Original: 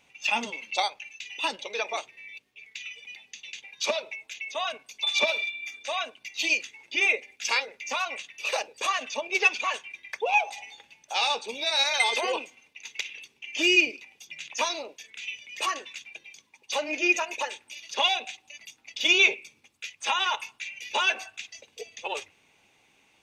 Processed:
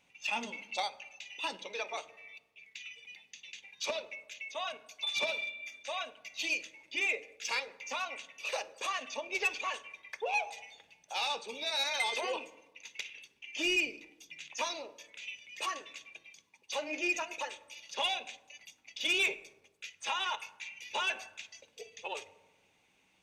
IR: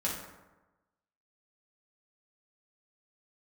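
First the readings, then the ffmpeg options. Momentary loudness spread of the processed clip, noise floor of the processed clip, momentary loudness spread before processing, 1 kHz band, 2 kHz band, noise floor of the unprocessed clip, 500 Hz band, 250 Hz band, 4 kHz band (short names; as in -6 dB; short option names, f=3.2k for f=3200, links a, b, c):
17 LU, -70 dBFS, 19 LU, -8.0 dB, -8.5 dB, -65 dBFS, -7.5 dB, -8.0 dB, -8.5 dB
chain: -filter_complex "[0:a]asoftclip=type=tanh:threshold=-15.5dB,asplit=2[a][b];[1:a]atrim=start_sample=2205,lowshelf=f=360:g=10.5[c];[b][c]afir=irnorm=-1:irlink=0,volume=-19dB[d];[a][d]amix=inputs=2:normalize=0,volume=-8dB"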